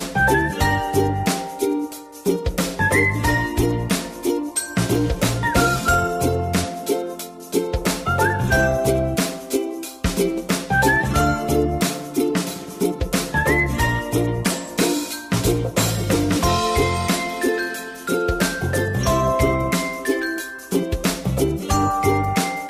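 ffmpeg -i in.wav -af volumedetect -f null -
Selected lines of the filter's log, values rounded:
mean_volume: -20.6 dB
max_volume: -6.1 dB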